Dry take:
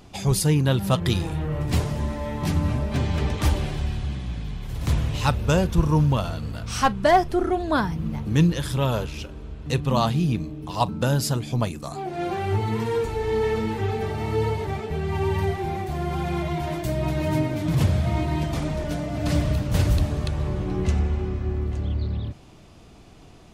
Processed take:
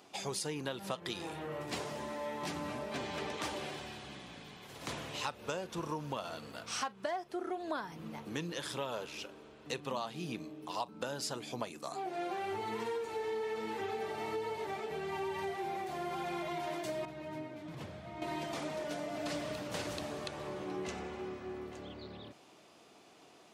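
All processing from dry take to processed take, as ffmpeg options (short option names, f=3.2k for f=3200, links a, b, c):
-filter_complex "[0:a]asettb=1/sr,asplit=3[a][b][c];[a]atrim=end=17.054[d];[b]atrim=start=17.05:end=18.22,asetpts=PTS-STARTPTS,afade=t=in:d=0.004:c=qsin,afade=t=out:st=1.166:d=0.004:c=qsin,lowpass=f=1k:p=1,equalizer=f=500:w=0.31:g=-9[e];[c]atrim=start=18.216[f];[d][e]acrossfade=d=0.004:c1=hsin:c2=qsin[g];[g][f]acrossfade=d=0.004:c1=qsin:c2=hsin,acrossover=split=9900[h][i];[i]acompressor=threshold=-59dB:ratio=4:attack=1:release=60[j];[h][j]amix=inputs=2:normalize=0,highpass=370,acompressor=threshold=-28dB:ratio=16,volume=-5.5dB"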